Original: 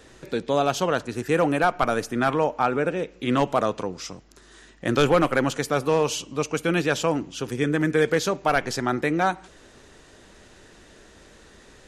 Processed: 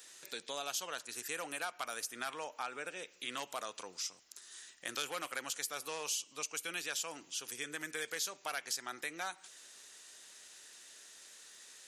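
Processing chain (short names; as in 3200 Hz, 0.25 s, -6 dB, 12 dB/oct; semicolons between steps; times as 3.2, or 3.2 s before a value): differentiator; compressor 2:1, threshold -45 dBFS, peak gain reduction 9 dB; gain +4.5 dB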